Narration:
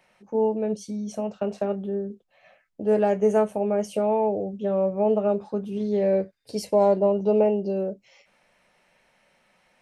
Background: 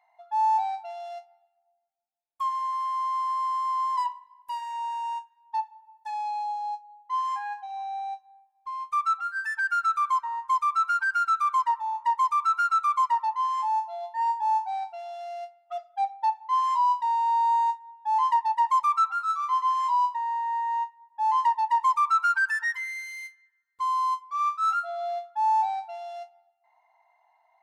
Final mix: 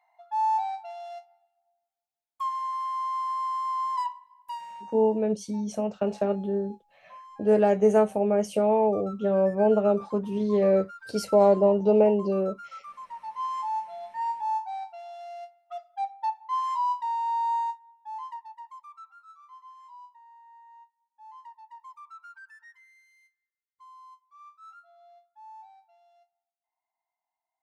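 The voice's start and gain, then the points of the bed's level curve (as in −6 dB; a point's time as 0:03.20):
4.60 s, +0.5 dB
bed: 0:04.49 −2 dB
0:05.13 −19.5 dB
0:13.05 −19.5 dB
0:13.45 −4 dB
0:17.58 −4 dB
0:18.81 −24.5 dB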